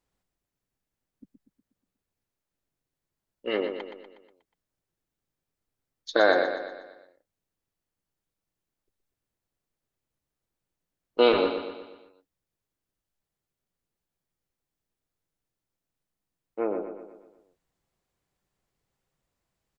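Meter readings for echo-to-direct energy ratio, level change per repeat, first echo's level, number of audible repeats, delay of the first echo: −6.5 dB, −6.0 dB, −8.0 dB, 5, 121 ms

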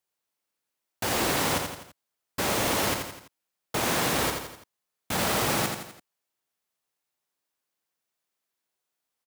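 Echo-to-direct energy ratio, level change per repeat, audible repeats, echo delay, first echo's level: −4.5 dB, −6.0 dB, 4, 84 ms, −5.5 dB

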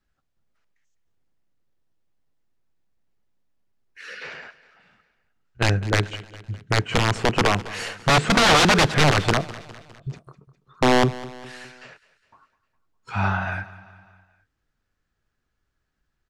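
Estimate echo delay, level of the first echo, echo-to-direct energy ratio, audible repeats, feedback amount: 204 ms, −18.0 dB, −16.5 dB, 4, 53%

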